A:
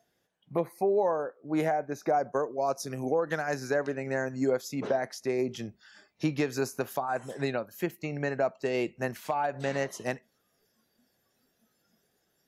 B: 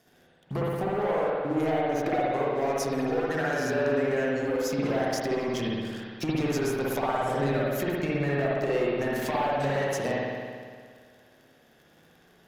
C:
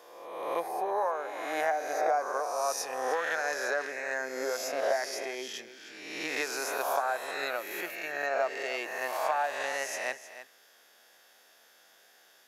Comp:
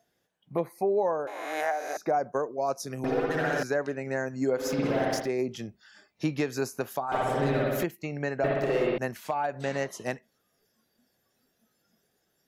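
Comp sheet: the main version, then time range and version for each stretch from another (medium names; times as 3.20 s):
A
1.27–1.97 s: from C
3.04–3.63 s: from B
4.62–5.24 s: from B, crossfade 0.16 s
7.12–7.84 s: from B
8.44–8.98 s: from B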